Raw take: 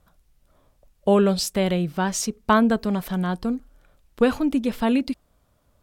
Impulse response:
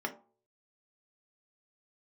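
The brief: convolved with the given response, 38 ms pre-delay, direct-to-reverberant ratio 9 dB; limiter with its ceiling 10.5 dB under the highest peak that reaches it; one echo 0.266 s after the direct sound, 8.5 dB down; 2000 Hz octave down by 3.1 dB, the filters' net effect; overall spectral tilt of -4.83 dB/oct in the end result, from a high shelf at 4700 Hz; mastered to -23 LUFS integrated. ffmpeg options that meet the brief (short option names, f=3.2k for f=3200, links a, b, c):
-filter_complex "[0:a]equalizer=f=2k:t=o:g=-6,highshelf=f=4.7k:g=8.5,alimiter=limit=-17.5dB:level=0:latency=1,aecho=1:1:266:0.376,asplit=2[a][b];[1:a]atrim=start_sample=2205,adelay=38[c];[b][c]afir=irnorm=-1:irlink=0,volume=-13.5dB[d];[a][d]amix=inputs=2:normalize=0,volume=3.5dB"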